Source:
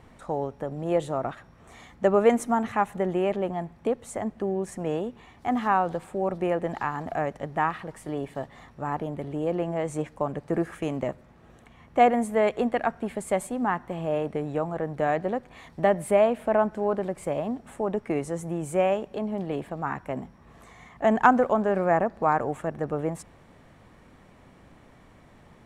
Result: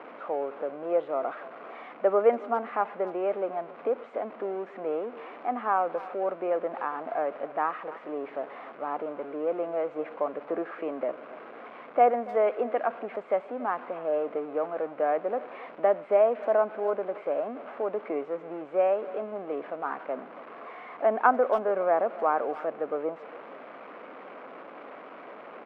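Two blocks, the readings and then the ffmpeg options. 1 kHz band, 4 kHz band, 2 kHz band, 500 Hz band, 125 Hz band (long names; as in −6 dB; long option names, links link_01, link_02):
−2.0 dB, can't be measured, −4.5 dB, −0.5 dB, below −20 dB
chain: -filter_complex "[0:a]aeval=exprs='val(0)+0.5*0.0237*sgn(val(0))':channel_layout=same,highpass=frequency=340:width=0.5412,highpass=frequency=340:width=1.3066,equalizer=frequency=360:width_type=q:width=4:gain=-6,equalizer=frequency=880:width_type=q:width=4:gain=-6,equalizer=frequency=1800:width_type=q:width=4:gain=-9,lowpass=frequency=2000:width=0.5412,lowpass=frequency=2000:width=1.3066,asplit=2[link_01][link_02];[link_02]adelay=280,highpass=300,lowpass=3400,asoftclip=type=hard:threshold=-15.5dB,volume=-18dB[link_03];[link_01][link_03]amix=inputs=2:normalize=0"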